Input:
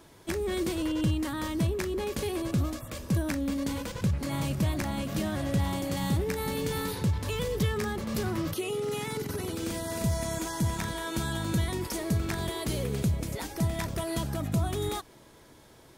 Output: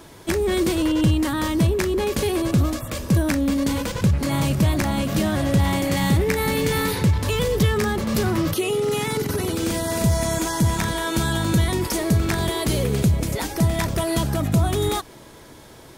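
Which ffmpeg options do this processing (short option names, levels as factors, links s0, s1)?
-filter_complex "[0:a]asettb=1/sr,asplit=3[s0][s1][s2];[s0]atrim=end=5.654[s3];[s1]atrim=start=5.65:end=7.14,asetpts=PTS-STARTPTS,afade=t=in:d=0.004:c=qsin,afade=t=out:st=1.486:d=0.004:c=qsin,equalizer=f=2100:w=2.6:g=5.5[s4];[s2]atrim=start=7.136[s5];[s3][s4]acrossfade=d=0.004:c1=hsin:c2=qsin[s6];[s6][s5]acrossfade=d=0.004:c1=qsin:c2=hsin,asplit=2[s7][s8];[s8]asoftclip=type=tanh:threshold=0.0316,volume=0.355[s9];[s7][s9]amix=inputs=2:normalize=0,volume=2.37"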